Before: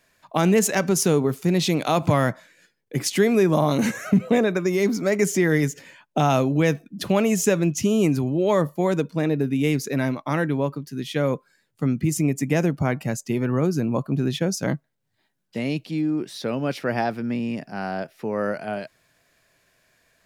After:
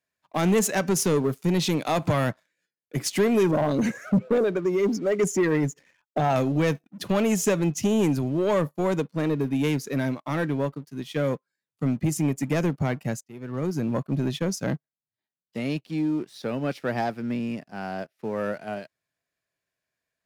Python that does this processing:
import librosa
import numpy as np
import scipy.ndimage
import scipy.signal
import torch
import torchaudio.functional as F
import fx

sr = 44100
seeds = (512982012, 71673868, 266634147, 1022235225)

y = fx.envelope_sharpen(x, sr, power=1.5, at=(3.51, 6.36))
y = fx.edit(y, sr, fx.fade_in_from(start_s=13.24, length_s=0.64, floor_db=-17.5), tone=tone)
y = scipy.signal.sosfilt(scipy.signal.butter(2, 50.0, 'highpass', fs=sr, output='sos'), y)
y = fx.leveller(y, sr, passes=2)
y = fx.upward_expand(y, sr, threshold_db=-34.0, expansion=1.5)
y = y * 10.0 ** (-6.0 / 20.0)